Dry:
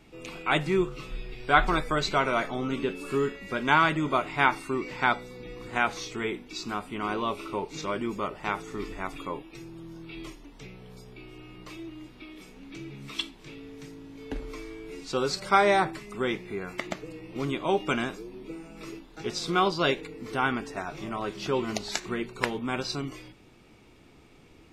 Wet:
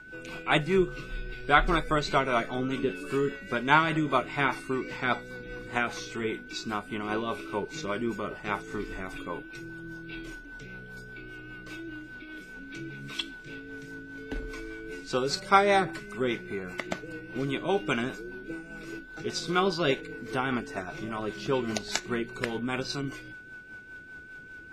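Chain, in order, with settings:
steady tone 1,500 Hz −42 dBFS
rotating-speaker cabinet horn 5 Hz
level +1.5 dB

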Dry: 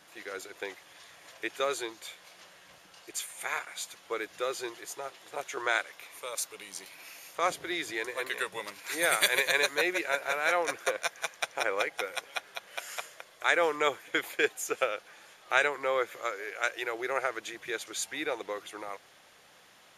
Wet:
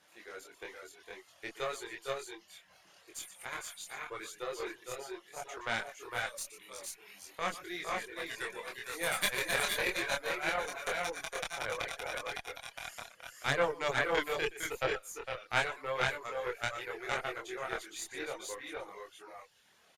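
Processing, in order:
multi-tap delay 120/457/481 ms −8.5/−5.5/−3.5 dB
reverb reduction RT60 0.79 s
harmonic generator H 3 −17 dB, 4 −18 dB, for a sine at −9 dBFS
multi-voice chorus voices 4, 0.8 Hz, delay 24 ms, depth 2.8 ms

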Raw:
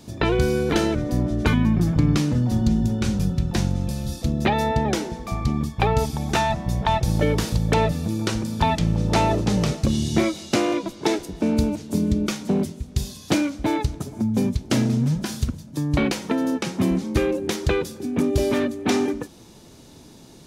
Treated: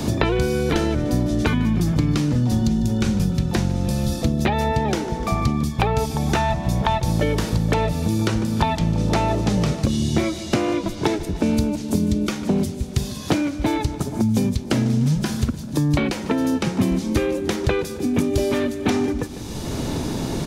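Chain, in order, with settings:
on a send: repeating echo 149 ms, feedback 41%, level −18.5 dB
on the sum: multiband upward and downward compressor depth 100%

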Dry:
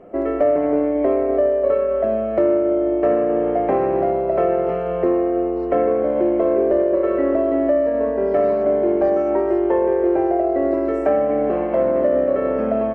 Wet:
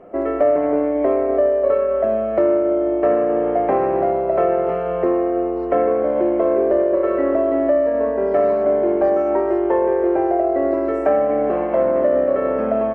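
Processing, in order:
parametric band 1,100 Hz +5 dB 2.2 octaves
level −2 dB

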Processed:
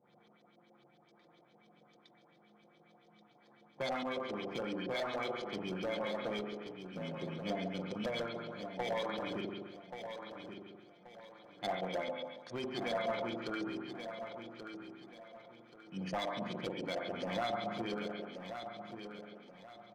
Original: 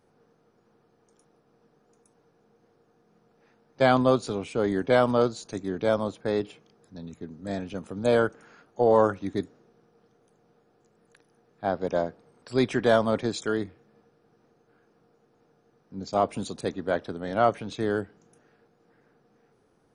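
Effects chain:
samples in bit-reversed order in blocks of 16 samples
convolution reverb RT60 0.80 s, pre-delay 43 ms, DRR −0.5 dB
downward compressor 8 to 1, threshold −30 dBFS, peak gain reduction 18 dB
high-pass filter 170 Hz 12 dB per octave
auto-filter low-pass saw up 7.2 Hz 450–5,600 Hz
Butterworth low-pass 8,600 Hz
gain into a clipping stage and back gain 24.5 dB
parametric band 410 Hz −7 dB 1.1 octaves
comb filter 5.7 ms, depth 39%
repeating echo 1,131 ms, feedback 32%, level −8.5 dB
level −2.5 dB

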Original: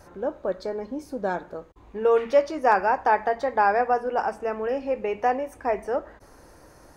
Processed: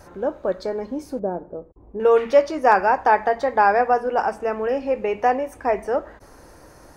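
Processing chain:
0:01.19–0:02.00: Chebyshev low-pass filter 530 Hz, order 2
level +4 dB

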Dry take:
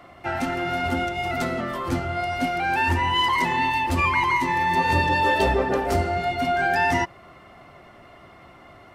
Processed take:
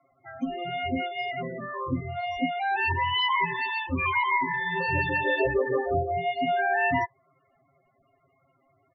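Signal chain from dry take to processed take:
comb filter 7.4 ms, depth 66%
noise reduction from a noise print of the clip's start 14 dB
spectral peaks only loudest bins 16
level −4.5 dB

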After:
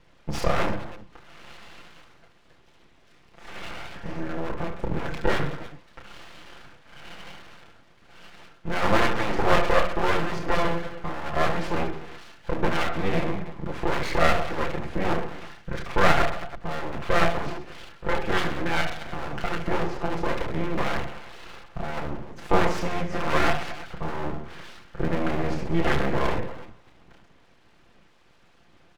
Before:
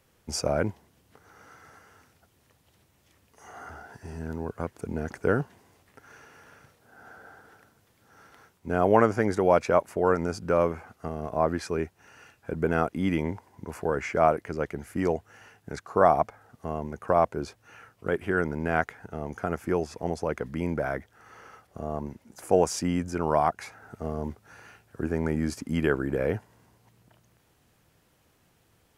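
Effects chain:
lower of the sound and its delayed copy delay 5.8 ms
Chebyshev low-pass filter 2,900 Hz, order 2
low-shelf EQ 81 Hz +11 dB
mains-hum notches 60/120/180/240/300/360 Hz
on a send: reverse bouncing-ball delay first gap 30 ms, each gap 1.4×, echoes 5
on the sum: full-wave rectification
in parallel at +1 dB: downward compressor, threshold −35 dBFS, peak gain reduction 19 dB
on the sum: level +2.5 dB

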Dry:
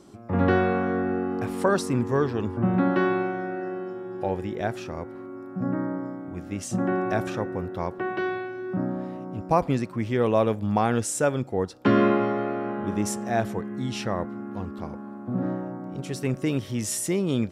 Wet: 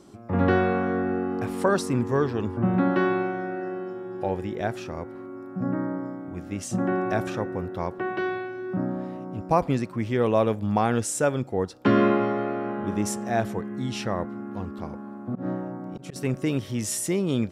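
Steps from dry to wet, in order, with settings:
0:15.26–0:16.16: volume swells 124 ms

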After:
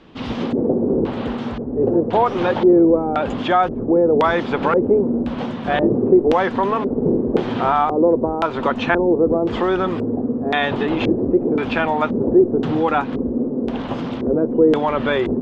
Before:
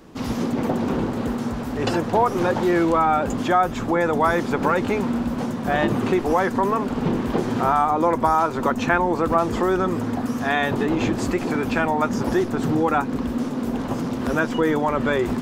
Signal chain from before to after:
dynamic equaliser 560 Hz, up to +4 dB, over −30 dBFS, Q 0.78
auto-filter low-pass square 0.95 Hz 430–3,300 Hz
level −1 dB

